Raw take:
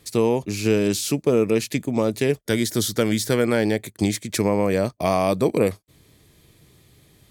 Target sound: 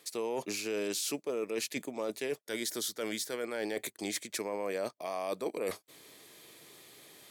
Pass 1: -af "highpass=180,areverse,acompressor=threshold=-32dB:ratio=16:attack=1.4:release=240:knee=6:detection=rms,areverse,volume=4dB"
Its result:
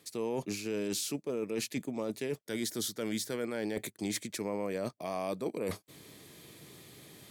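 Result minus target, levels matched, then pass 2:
250 Hz band +4.0 dB
-af "highpass=420,areverse,acompressor=threshold=-32dB:ratio=16:attack=1.4:release=240:knee=6:detection=rms,areverse,volume=4dB"

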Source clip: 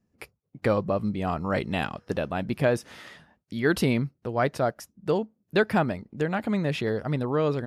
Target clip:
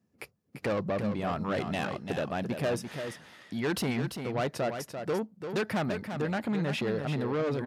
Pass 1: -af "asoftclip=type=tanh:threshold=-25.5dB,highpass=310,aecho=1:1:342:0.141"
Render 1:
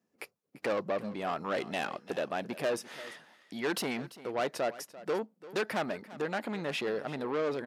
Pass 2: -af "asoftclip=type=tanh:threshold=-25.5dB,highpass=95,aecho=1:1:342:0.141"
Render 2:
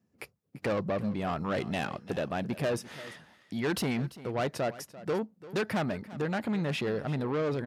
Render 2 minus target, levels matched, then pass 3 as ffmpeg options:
echo-to-direct −9.5 dB
-af "asoftclip=type=tanh:threshold=-25.5dB,highpass=95,aecho=1:1:342:0.422"

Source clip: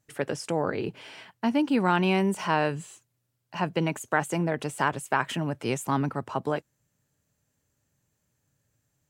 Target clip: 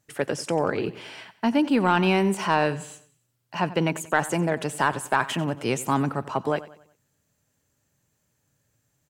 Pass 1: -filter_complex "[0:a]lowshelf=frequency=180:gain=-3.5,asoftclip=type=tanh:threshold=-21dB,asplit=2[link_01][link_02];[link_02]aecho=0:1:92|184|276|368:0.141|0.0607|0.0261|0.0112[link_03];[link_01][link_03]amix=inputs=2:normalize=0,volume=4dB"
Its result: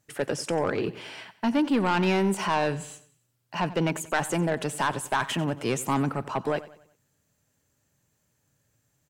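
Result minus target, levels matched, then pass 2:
soft clipping: distortion +12 dB
-filter_complex "[0:a]lowshelf=frequency=180:gain=-3.5,asoftclip=type=tanh:threshold=-10.5dB,asplit=2[link_01][link_02];[link_02]aecho=0:1:92|184|276|368:0.141|0.0607|0.0261|0.0112[link_03];[link_01][link_03]amix=inputs=2:normalize=0,volume=4dB"

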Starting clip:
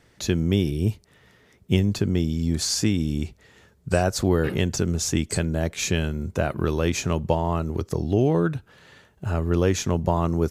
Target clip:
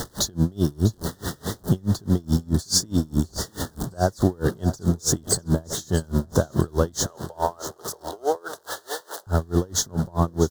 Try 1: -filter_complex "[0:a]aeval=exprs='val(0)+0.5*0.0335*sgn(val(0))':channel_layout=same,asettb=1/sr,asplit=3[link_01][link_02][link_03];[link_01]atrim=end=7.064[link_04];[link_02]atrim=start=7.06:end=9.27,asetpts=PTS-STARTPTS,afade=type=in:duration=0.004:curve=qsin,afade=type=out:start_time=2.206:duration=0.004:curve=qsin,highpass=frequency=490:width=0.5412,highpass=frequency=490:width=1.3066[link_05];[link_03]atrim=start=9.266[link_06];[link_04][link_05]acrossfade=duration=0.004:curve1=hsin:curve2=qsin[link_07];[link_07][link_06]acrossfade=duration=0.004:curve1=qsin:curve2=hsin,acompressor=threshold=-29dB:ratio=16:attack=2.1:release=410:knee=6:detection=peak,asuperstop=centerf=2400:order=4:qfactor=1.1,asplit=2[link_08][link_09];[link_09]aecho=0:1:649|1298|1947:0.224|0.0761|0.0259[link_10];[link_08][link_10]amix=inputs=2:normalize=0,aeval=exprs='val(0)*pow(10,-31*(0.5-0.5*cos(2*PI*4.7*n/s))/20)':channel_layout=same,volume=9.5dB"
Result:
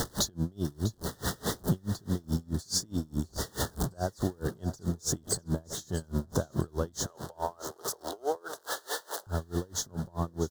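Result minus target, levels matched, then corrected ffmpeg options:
downward compressor: peak gain reduction +11 dB
-filter_complex "[0:a]aeval=exprs='val(0)+0.5*0.0335*sgn(val(0))':channel_layout=same,asettb=1/sr,asplit=3[link_01][link_02][link_03];[link_01]atrim=end=7.064[link_04];[link_02]atrim=start=7.06:end=9.27,asetpts=PTS-STARTPTS,afade=type=in:duration=0.004:curve=qsin,afade=type=out:start_time=2.206:duration=0.004:curve=qsin,highpass=frequency=490:width=0.5412,highpass=frequency=490:width=1.3066[link_05];[link_03]atrim=start=9.266[link_06];[link_04][link_05]acrossfade=duration=0.004:curve1=hsin:curve2=qsin[link_07];[link_07][link_06]acrossfade=duration=0.004:curve1=qsin:curve2=hsin,acompressor=threshold=-17.5dB:ratio=16:attack=2.1:release=410:knee=6:detection=peak,asuperstop=centerf=2400:order=4:qfactor=1.1,asplit=2[link_08][link_09];[link_09]aecho=0:1:649|1298|1947:0.224|0.0761|0.0259[link_10];[link_08][link_10]amix=inputs=2:normalize=0,aeval=exprs='val(0)*pow(10,-31*(0.5-0.5*cos(2*PI*4.7*n/s))/20)':channel_layout=same,volume=9.5dB"

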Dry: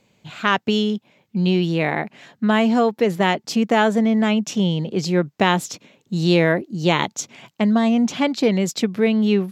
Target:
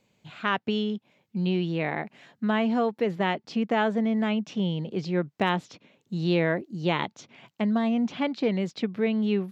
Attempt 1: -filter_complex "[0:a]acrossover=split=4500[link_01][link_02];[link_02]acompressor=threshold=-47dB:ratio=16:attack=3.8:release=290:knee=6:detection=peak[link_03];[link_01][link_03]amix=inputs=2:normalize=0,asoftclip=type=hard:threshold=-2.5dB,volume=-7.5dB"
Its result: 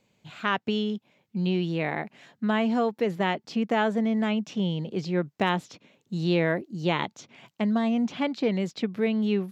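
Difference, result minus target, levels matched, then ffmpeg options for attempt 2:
downward compressor: peak gain reduction −10 dB
-filter_complex "[0:a]acrossover=split=4500[link_01][link_02];[link_02]acompressor=threshold=-57.5dB:ratio=16:attack=3.8:release=290:knee=6:detection=peak[link_03];[link_01][link_03]amix=inputs=2:normalize=0,asoftclip=type=hard:threshold=-2.5dB,volume=-7.5dB"

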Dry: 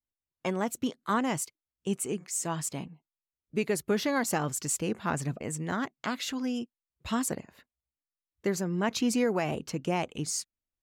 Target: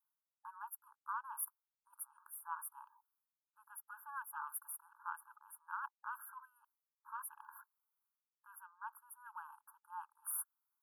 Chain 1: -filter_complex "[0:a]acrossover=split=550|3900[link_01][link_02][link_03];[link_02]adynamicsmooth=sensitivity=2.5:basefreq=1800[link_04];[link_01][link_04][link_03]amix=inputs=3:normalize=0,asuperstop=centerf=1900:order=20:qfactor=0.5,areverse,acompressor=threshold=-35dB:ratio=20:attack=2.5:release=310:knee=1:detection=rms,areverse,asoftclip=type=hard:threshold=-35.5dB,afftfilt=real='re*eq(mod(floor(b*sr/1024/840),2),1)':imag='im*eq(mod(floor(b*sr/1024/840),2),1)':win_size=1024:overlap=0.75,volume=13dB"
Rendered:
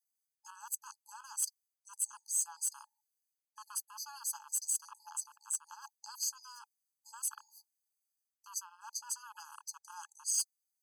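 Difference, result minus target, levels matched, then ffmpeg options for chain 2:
2,000 Hz band −14.5 dB; downward compressor: peak gain reduction −9 dB
-filter_complex "[0:a]acrossover=split=550|3900[link_01][link_02][link_03];[link_02]adynamicsmooth=sensitivity=2.5:basefreq=1800[link_04];[link_01][link_04][link_03]amix=inputs=3:normalize=0,asuperstop=centerf=4300:order=20:qfactor=0.5,areverse,acompressor=threshold=-42.5dB:ratio=20:attack=2.5:release=310:knee=1:detection=rms,areverse,asoftclip=type=hard:threshold=-35.5dB,afftfilt=real='re*eq(mod(floor(b*sr/1024/840),2),1)':imag='im*eq(mod(floor(b*sr/1024/840),2),1)':win_size=1024:overlap=0.75,volume=13dB"

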